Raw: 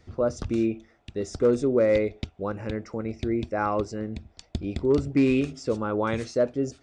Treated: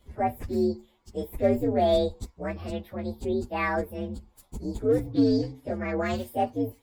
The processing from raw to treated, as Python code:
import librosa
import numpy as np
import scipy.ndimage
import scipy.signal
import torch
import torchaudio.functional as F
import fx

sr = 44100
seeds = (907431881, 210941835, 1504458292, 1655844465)

y = fx.partial_stretch(x, sr, pct=127)
y = fx.low_shelf(y, sr, hz=73.0, db=10.5, at=(1.33, 2.23))
y = fx.lowpass(y, sr, hz=4900.0, slope=12, at=(5.12, 6.0))